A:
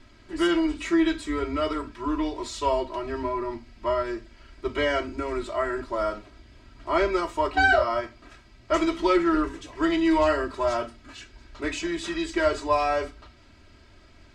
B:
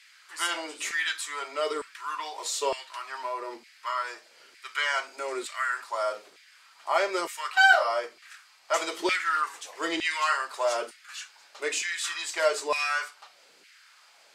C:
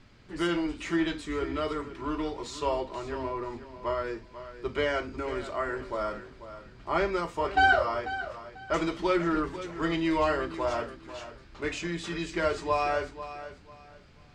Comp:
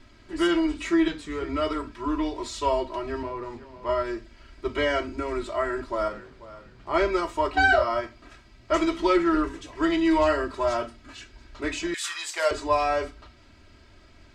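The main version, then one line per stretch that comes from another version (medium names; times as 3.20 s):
A
1.08–1.49 s: from C
3.23–3.89 s: from C
6.08–6.94 s: from C
11.94–12.51 s: from B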